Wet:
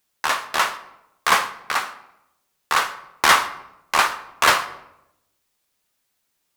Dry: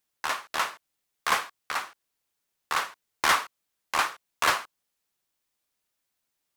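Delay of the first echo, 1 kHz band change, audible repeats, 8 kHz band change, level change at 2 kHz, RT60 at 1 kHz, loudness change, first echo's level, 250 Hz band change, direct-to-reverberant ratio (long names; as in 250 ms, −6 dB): no echo audible, +8.0 dB, no echo audible, +8.0 dB, +8.0 dB, 0.80 s, +8.0 dB, no echo audible, +7.5 dB, 9.5 dB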